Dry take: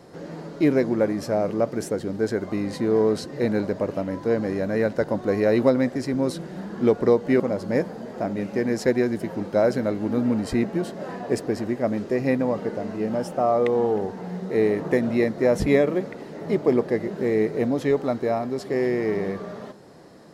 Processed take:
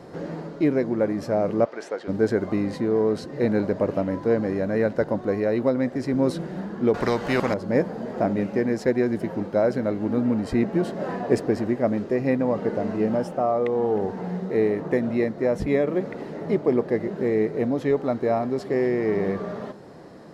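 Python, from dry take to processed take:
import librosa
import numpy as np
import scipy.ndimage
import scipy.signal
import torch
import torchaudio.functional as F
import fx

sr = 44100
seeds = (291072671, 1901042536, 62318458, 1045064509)

y = fx.bandpass_edges(x, sr, low_hz=690.0, high_hz=4800.0, at=(1.64, 2.07), fade=0.02)
y = fx.spectral_comp(y, sr, ratio=2.0, at=(6.94, 7.54))
y = fx.high_shelf(y, sr, hz=3900.0, db=-9.0)
y = fx.rider(y, sr, range_db=5, speed_s=0.5)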